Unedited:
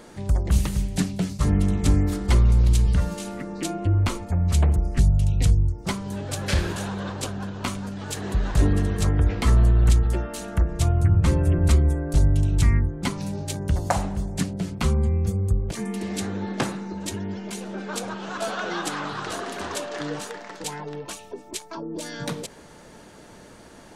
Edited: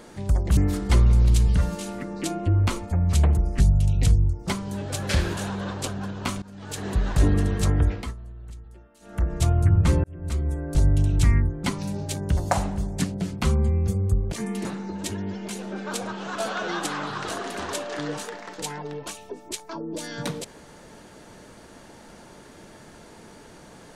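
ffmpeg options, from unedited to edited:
-filter_complex "[0:a]asplit=7[a][b][c][d][e][f][g];[a]atrim=end=0.572[h];[b]atrim=start=1.958:end=7.81,asetpts=PTS-STARTPTS,afade=t=out:st=5.848:d=0.004:c=hsin:silence=0.11885[i];[c]atrim=start=7.81:end=9.53,asetpts=PTS-STARTPTS,afade=t=in:d=0.44:silence=0.11885,afade=t=out:st=1.39:d=0.33:silence=0.0668344[j];[d]atrim=start=9.53:end=10.39,asetpts=PTS-STARTPTS,volume=-23.5dB[k];[e]atrim=start=10.39:end=11.43,asetpts=PTS-STARTPTS,afade=t=in:d=0.33:silence=0.0668344,afade=t=out:st=1.036:d=0.004:c=hsin[l];[f]atrim=start=11.43:end=16.042,asetpts=PTS-STARTPTS,afade=t=in:d=0.88[m];[g]atrim=start=16.668[n];[i][j][k][l][m]concat=n=5:v=0:a=1[o];[h][o]acrossfade=d=0.004:c1=hsin:c2=hsin[p];[p][n]acrossfade=d=0.004:c1=hsin:c2=hsin"

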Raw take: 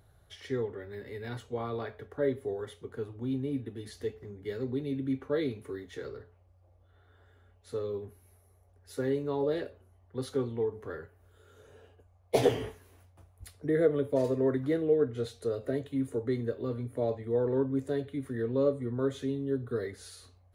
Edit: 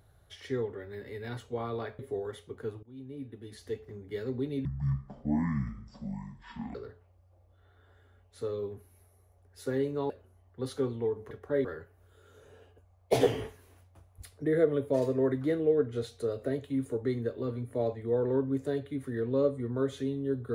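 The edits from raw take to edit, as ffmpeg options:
-filter_complex "[0:a]asplit=8[a][b][c][d][e][f][g][h];[a]atrim=end=1.992[i];[b]atrim=start=2.328:end=3.17,asetpts=PTS-STARTPTS,afade=t=out:st=0.838:d=0.004:c=hsin:silence=0.0794328[j];[c]atrim=start=3.17:end=4.994,asetpts=PTS-STARTPTS,afade=t=in:d=1.08:silence=0.0794328[k];[d]atrim=start=4.99:end=6.06,asetpts=PTS-STARTPTS,asetrate=22491,aresample=44100[l];[e]atrim=start=6.056:end=9.412[m];[f]atrim=start=9.658:end=10.872[n];[g]atrim=start=1.988:end=2.332[o];[h]atrim=start=10.868[p];[j][k]concat=n=2:v=0:a=1[q];[i][q]acrossfade=d=0.004:c1=hsin:c2=hsin[r];[r][l]acrossfade=d=0.004:c1=hsin:c2=hsin[s];[s][m]acrossfade=d=0.004:c1=hsin:c2=hsin[t];[t][n]acrossfade=d=0.004:c1=hsin:c2=hsin[u];[u][o]acrossfade=d=0.004:c1=hsin:c2=hsin[v];[v][p]acrossfade=d=0.004:c1=hsin:c2=hsin"

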